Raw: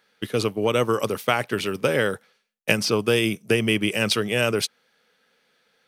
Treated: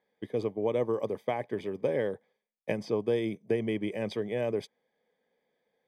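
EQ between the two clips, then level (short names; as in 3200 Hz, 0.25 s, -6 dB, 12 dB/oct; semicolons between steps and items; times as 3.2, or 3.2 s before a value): running mean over 32 samples; low shelf 350 Hz -12 dB; 0.0 dB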